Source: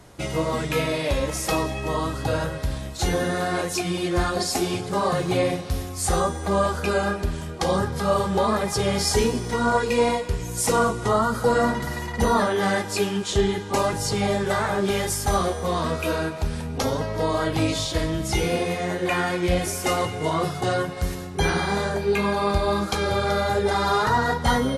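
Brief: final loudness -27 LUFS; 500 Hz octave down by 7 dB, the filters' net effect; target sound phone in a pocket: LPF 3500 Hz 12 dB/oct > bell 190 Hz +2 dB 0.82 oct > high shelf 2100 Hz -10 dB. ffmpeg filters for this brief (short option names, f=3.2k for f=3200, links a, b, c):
-af "lowpass=3.5k,equalizer=f=190:t=o:w=0.82:g=2,equalizer=f=500:t=o:g=-8.5,highshelf=f=2.1k:g=-10,volume=0.5dB"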